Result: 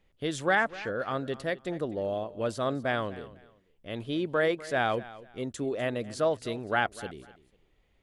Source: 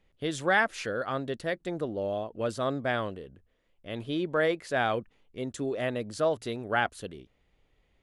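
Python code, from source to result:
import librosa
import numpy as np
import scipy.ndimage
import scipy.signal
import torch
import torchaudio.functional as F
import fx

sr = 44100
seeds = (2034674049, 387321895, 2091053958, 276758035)

y = fx.air_absorb(x, sr, metres=220.0, at=(0.55, 1.0))
y = fx.echo_feedback(y, sr, ms=248, feedback_pct=25, wet_db=-18.0)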